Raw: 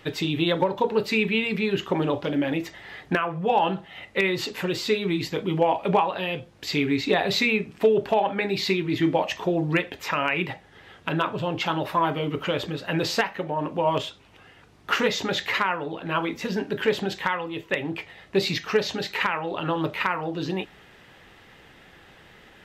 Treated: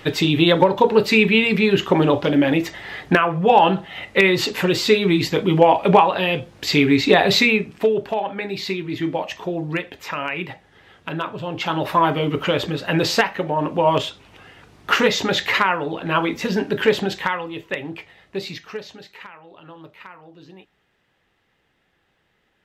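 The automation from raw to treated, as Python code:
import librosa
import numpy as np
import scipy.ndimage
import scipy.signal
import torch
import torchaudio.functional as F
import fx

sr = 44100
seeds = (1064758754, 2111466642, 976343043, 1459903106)

y = fx.gain(x, sr, db=fx.line((7.32, 8.0), (8.11, -1.5), (11.43, -1.5), (11.9, 6.0), (16.9, 6.0), (18.5, -6.0), (19.31, -16.0)))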